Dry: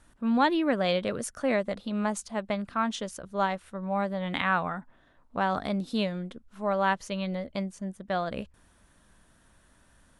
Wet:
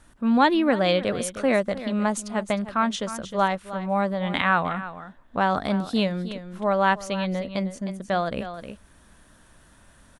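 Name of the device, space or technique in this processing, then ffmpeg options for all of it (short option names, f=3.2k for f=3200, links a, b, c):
ducked delay: -filter_complex "[0:a]asplit=3[a][b][c];[b]adelay=310,volume=-2dB[d];[c]apad=whole_len=463063[e];[d][e]sidechaincompress=threshold=-39dB:ratio=4:attack=21:release=872[f];[a][f]amix=inputs=2:normalize=0,volume=5dB"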